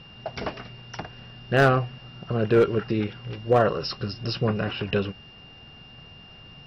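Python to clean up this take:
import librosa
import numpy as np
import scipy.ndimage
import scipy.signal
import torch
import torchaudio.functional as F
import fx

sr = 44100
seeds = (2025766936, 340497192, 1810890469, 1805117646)

y = fx.fix_declip(x, sr, threshold_db=-11.0)
y = fx.notch(y, sr, hz=2800.0, q=30.0)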